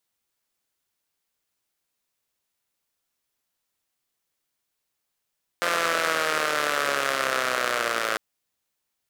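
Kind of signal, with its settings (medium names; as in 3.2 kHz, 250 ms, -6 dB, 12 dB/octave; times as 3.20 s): four-cylinder engine model, changing speed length 2.55 s, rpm 5200, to 3300, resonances 580/1300 Hz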